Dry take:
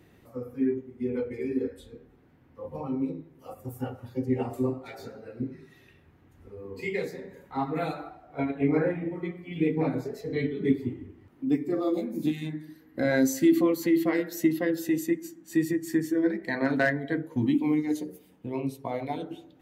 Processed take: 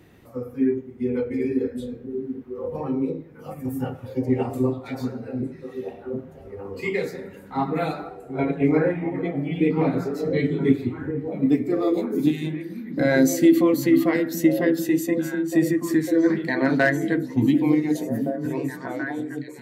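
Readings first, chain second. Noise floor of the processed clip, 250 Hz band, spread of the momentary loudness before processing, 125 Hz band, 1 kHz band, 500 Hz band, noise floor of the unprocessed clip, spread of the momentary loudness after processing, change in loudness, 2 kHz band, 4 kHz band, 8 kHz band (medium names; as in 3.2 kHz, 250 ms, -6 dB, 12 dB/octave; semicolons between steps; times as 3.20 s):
-44 dBFS, +6.0 dB, 17 LU, +6.5 dB, +5.0 dB, +6.0 dB, -58 dBFS, 14 LU, +5.0 dB, +5.5 dB, +5.0 dB, +5.0 dB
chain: fade out at the end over 1.41 s; repeats whose band climbs or falls 733 ms, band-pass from 180 Hz, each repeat 1.4 oct, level -2.5 dB; trim +5 dB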